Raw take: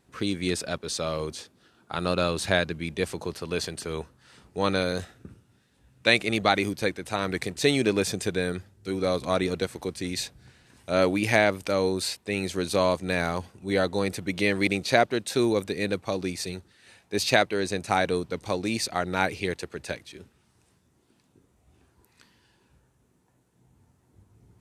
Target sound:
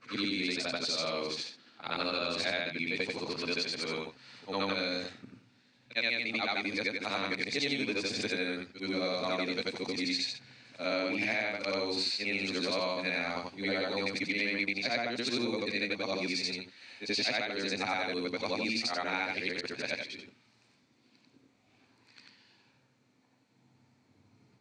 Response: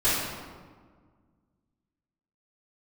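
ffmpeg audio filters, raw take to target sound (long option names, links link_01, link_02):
-af "afftfilt=real='re':imag='-im':win_size=8192:overlap=0.75,highpass=frequency=130:width=0.5412,highpass=frequency=130:width=1.3066,equalizer=frequency=170:width_type=q:width=4:gain=-9,equalizer=frequency=250:width_type=q:width=4:gain=6,equalizer=frequency=380:width_type=q:width=4:gain=-6,equalizer=frequency=2300:width_type=q:width=4:gain=10,equalizer=frequency=4300:width_type=q:width=4:gain=10,lowpass=frequency=6700:width=0.5412,lowpass=frequency=6700:width=1.3066,acompressor=threshold=-32dB:ratio=6,volume=3dB"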